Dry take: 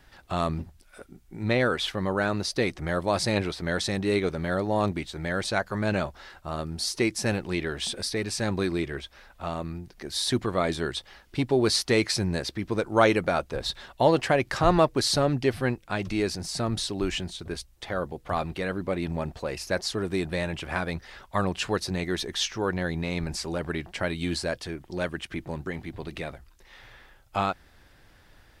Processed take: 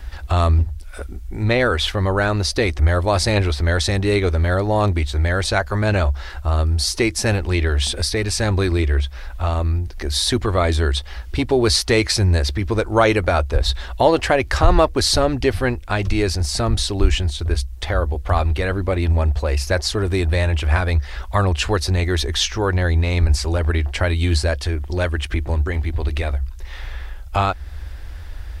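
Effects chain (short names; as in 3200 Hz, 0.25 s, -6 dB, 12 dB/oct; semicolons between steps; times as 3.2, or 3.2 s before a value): resonant low shelf 100 Hz +13 dB, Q 3; in parallel at +2 dB: compressor, threshold -35 dBFS, peak gain reduction 23.5 dB; on the sum: maximiser +6 dB; gain -1 dB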